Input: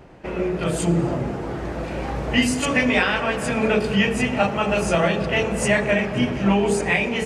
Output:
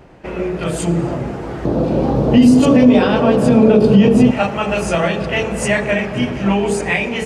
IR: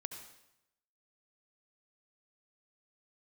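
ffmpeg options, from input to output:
-filter_complex "[0:a]asettb=1/sr,asplit=3[s0][s1][s2];[s0]atrim=end=1.654[s3];[s1]atrim=start=1.65:end=4.31,asetpts=PTS-STARTPTS,afade=t=in:d=0.004:c=qsin,afade=t=out:st=2.656:d=0.004:c=qsin,equalizer=f=125:t=o:w=1:g=9,equalizer=f=250:t=o:w=1:g=11,equalizer=f=500:t=o:w=1:g=8,equalizer=f=1000:t=o:w=1:g=3,equalizer=f=2000:t=o:w=1:g=-10,equalizer=f=4000:t=o:w=1:g=4,equalizer=f=8000:t=o:w=1:g=-5[s4];[s2]atrim=start=4.306[s5];[s3][s4]acrossfade=d=0.004:c1=hsin:c2=qsin[s6];[s6][s5]acrossfade=d=0.004:c1=qsin:c2=hsin,alimiter=level_in=1.5:limit=0.891:release=50:level=0:latency=1,volume=0.891"

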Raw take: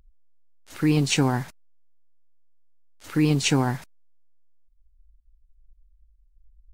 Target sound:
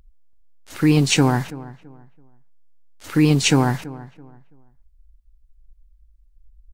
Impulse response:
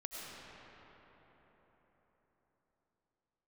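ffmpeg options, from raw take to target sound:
-filter_complex "[0:a]asplit=2[s0][s1];[s1]adelay=332,lowpass=f=1700:p=1,volume=0.133,asplit=2[s2][s3];[s3]adelay=332,lowpass=f=1700:p=1,volume=0.29,asplit=2[s4][s5];[s5]adelay=332,lowpass=f=1700:p=1,volume=0.29[s6];[s0][s2][s4][s6]amix=inputs=4:normalize=0,volume=1.78"

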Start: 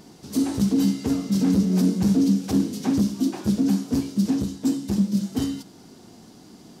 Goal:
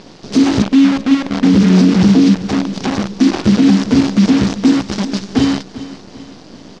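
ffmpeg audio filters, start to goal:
-filter_complex "[0:a]asettb=1/sr,asplit=3[s0][s1][s2];[s0]atrim=end=0.624[s3];[s1]atrim=start=0.62:end=1.44,asetpts=PTS-STARTPTS,afade=t=in:d=0.004:c=qsin,afade=t=out:st=0.816:d=0.004:c=qsin,asplit=3[s4][s5][s6];[s4]bandpass=f=270:t=q:w=8,volume=1[s7];[s5]bandpass=f=2290:t=q:w=8,volume=0.501[s8];[s6]bandpass=f=3010:t=q:w=8,volume=0.355[s9];[s7][s8][s9]amix=inputs=3:normalize=0[s10];[s2]atrim=start=1.436[s11];[s3][s10]acrossfade=d=0.004:c1=hsin:c2=qsin[s12];[s12][s11]acrossfade=d=0.004:c1=qsin:c2=hsin,asplit=3[s13][s14][s15];[s13]afade=t=out:st=2.33:d=0.02[s16];[s14]acompressor=threshold=0.0355:ratio=16,afade=t=in:st=2.33:d=0.02,afade=t=out:st=3.19:d=0.02[s17];[s15]afade=t=in:st=3.19:d=0.02[s18];[s16][s17][s18]amix=inputs=3:normalize=0,asettb=1/sr,asplit=3[s19][s20][s21];[s19]atrim=end=4.824[s22];[s20]atrim=start=4.82:end=5.29,asetpts=PTS-STARTPTS,afade=t=in:d=0.004:c=qsin,afade=t=out:st=0.466:d=0.004:c=qsin,equalizer=f=170:w=0.33:g=-12[s23];[s21]atrim=start=5.286[s24];[s22][s23]acrossfade=d=0.004:c1=hsin:c2=qsin[s25];[s25][s24]acrossfade=d=0.004:c1=qsin:c2=hsin,acrusher=bits=6:dc=4:mix=0:aa=0.000001,lowpass=f=5600:w=0.5412,lowpass=f=5600:w=1.3066,lowshelf=f=67:g=-7.5,aecho=1:1:391|782|1173|1564:0.15|0.0703|0.0331|0.0155,alimiter=level_in=5.62:limit=0.891:release=50:level=0:latency=1,volume=0.891"

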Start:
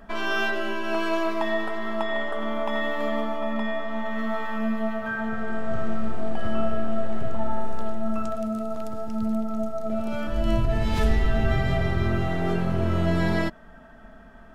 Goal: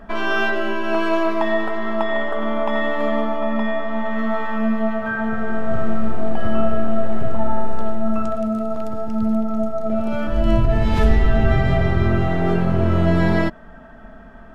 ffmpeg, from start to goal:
-af "highshelf=f=3600:g=-9.5,volume=2.11"

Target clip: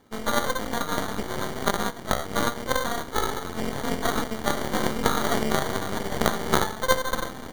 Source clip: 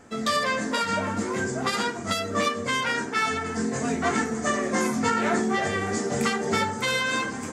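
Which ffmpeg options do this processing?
-af "acrusher=samples=17:mix=1:aa=0.000001,aeval=exprs='0.266*(cos(1*acos(clip(val(0)/0.266,-1,1)))-cos(1*PI/2))+0.0668*(cos(3*acos(clip(val(0)/0.266,-1,1)))-cos(3*PI/2))+0.106*(cos(4*acos(clip(val(0)/0.266,-1,1)))-cos(4*PI/2))+0.0841*(cos(6*acos(clip(val(0)/0.266,-1,1)))-cos(6*PI/2))+0.0422*(cos(8*acos(clip(val(0)/0.266,-1,1)))-cos(8*PI/2))':c=same,volume=1.58"

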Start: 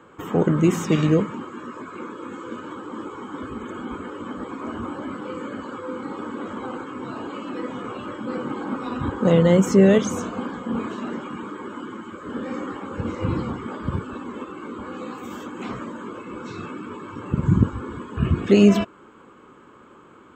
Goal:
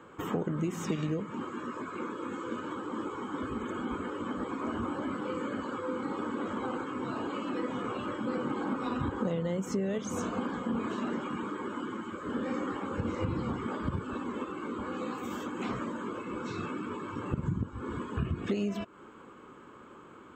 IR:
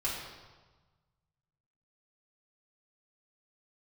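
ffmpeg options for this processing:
-af "acompressor=threshold=0.0562:ratio=16,volume=0.75"

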